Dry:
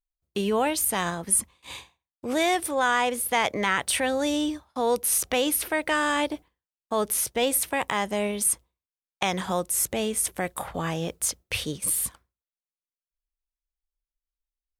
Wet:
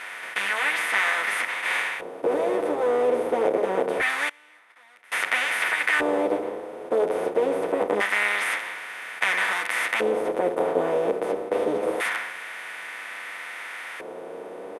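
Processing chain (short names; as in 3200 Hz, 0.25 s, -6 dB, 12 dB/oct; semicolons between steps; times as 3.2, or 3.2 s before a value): per-bin compression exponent 0.2; 4.28–5.12 flipped gate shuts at -11 dBFS, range -27 dB; LFO band-pass square 0.25 Hz 450–1900 Hz; endless flanger 9.1 ms +0.57 Hz; gain +3 dB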